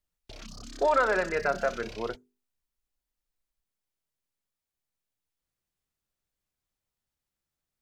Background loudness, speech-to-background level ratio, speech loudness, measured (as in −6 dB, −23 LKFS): −45.0 LKFS, 17.0 dB, −28.0 LKFS